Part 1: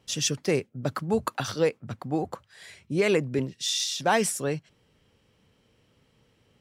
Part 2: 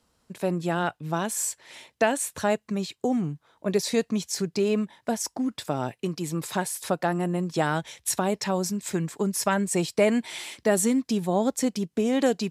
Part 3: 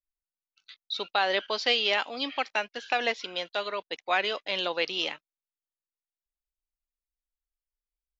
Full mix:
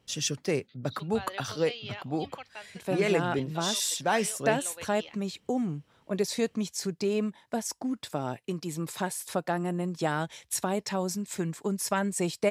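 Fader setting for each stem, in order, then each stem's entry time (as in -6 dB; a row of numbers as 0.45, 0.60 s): -3.5, -4.0, -15.5 dB; 0.00, 2.45, 0.00 s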